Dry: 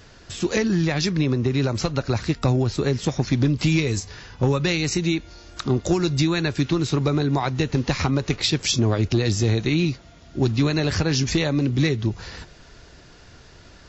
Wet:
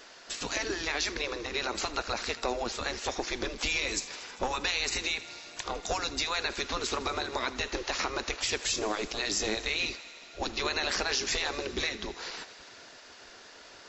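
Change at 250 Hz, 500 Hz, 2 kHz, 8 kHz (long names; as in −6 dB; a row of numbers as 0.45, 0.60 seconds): −18.5 dB, −10.0 dB, −2.0 dB, can't be measured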